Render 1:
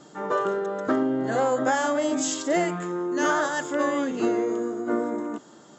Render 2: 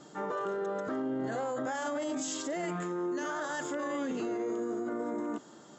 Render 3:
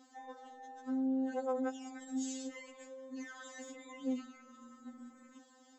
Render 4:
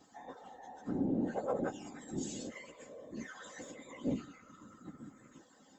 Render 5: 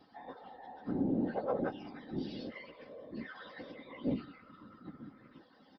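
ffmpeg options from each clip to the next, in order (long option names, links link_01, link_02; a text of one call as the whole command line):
ffmpeg -i in.wav -af "alimiter=limit=-24dB:level=0:latency=1:release=30,volume=-3dB" out.wav
ffmpeg -i in.wav -af "afftfilt=real='re*3.46*eq(mod(b,12),0)':imag='im*3.46*eq(mod(b,12),0)':win_size=2048:overlap=0.75,volume=-6dB" out.wav
ffmpeg -i in.wav -af "afftfilt=real='hypot(re,im)*cos(2*PI*random(0))':imag='hypot(re,im)*sin(2*PI*random(1))':win_size=512:overlap=0.75,volume=6dB" out.wav
ffmpeg -i in.wav -af "aresample=11025,aresample=44100,volume=1dB" out.wav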